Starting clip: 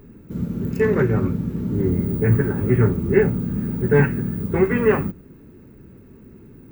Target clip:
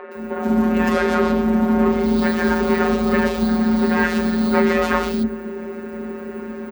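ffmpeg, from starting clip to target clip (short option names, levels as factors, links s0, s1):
-filter_complex "[0:a]asettb=1/sr,asplit=3[s0][s1][s2];[s0]atrim=end=2.834[s3];[s1]atrim=start=2.83:end=3.36,asetpts=PTS-STARTPTS,afade=t=in:d=0.004:c=qsin,afade=t=out:st=0.526:d=0.004:c=qsin,aecho=1:1:1.8:0.74,atrim=end_sample=23373[s4];[s2]atrim=start=3.356[s5];[s3][s4]acrossfade=d=0.004:c1=hsin:c2=qsin[s6];[s6][s5]acrossfade=d=0.004:c1=qsin:c2=hsin,asplit=2[s7][s8];[s8]highpass=f=720:p=1,volume=100,asoftclip=type=tanh:threshold=0.794[s9];[s7][s9]amix=inputs=2:normalize=0,lowpass=f=1500:p=1,volume=0.501,acrossover=split=340|2800[s10][s11][s12];[s12]adelay=120[s13];[s10]adelay=150[s14];[s14][s11][s13]amix=inputs=3:normalize=0,afftfilt=real='hypot(re,im)*cos(PI*b)':imag='0':win_size=1024:overlap=0.75,afreqshift=49,volume=0.75"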